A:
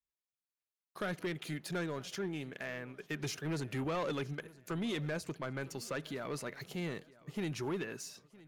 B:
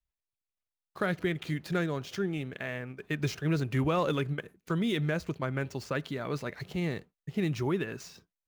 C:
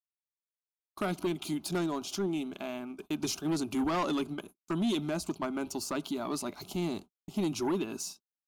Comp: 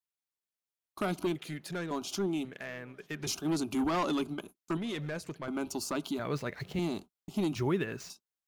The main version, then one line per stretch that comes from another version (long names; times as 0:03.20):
C
0:01.36–0:01.91: punch in from A
0:02.45–0:03.27: punch in from A
0:04.77–0:05.48: punch in from A
0:06.19–0:06.79: punch in from B
0:07.56–0:08.10: punch in from B